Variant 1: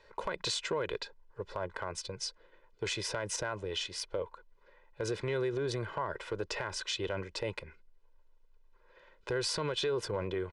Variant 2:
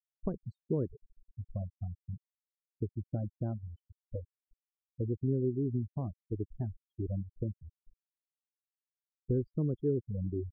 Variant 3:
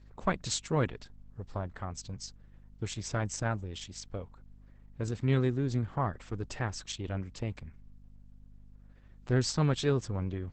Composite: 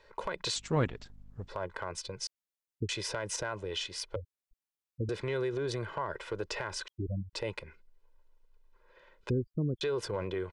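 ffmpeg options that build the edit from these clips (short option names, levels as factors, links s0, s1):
-filter_complex "[1:a]asplit=4[s0][s1][s2][s3];[0:a]asplit=6[s4][s5][s6][s7][s8][s9];[s4]atrim=end=0.562[s10];[2:a]atrim=start=0.558:end=1.482[s11];[s5]atrim=start=1.478:end=2.272[s12];[s0]atrim=start=2.268:end=2.892[s13];[s6]atrim=start=2.888:end=4.162[s14];[s1]atrim=start=4.158:end=5.092[s15];[s7]atrim=start=5.088:end=6.882[s16];[s2]atrim=start=6.878:end=7.332[s17];[s8]atrim=start=7.328:end=9.302[s18];[s3]atrim=start=9.298:end=9.812[s19];[s9]atrim=start=9.808[s20];[s10][s11]acrossfade=d=0.004:c1=hsin:c2=hsin[s21];[s21][s12]acrossfade=d=0.004:c1=hsin:c2=hsin[s22];[s22][s13]acrossfade=d=0.004:c1=hsin:c2=hsin[s23];[s23][s14]acrossfade=d=0.004:c1=hsin:c2=hsin[s24];[s24][s15]acrossfade=d=0.004:c1=hsin:c2=hsin[s25];[s25][s16]acrossfade=d=0.004:c1=hsin:c2=hsin[s26];[s26][s17]acrossfade=d=0.004:c1=hsin:c2=hsin[s27];[s27][s18]acrossfade=d=0.004:c1=hsin:c2=hsin[s28];[s28][s19]acrossfade=d=0.004:c1=hsin:c2=hsin[s29];[s29][s20]acrossfade=d=0.004:c1=hsin:c2=hsin"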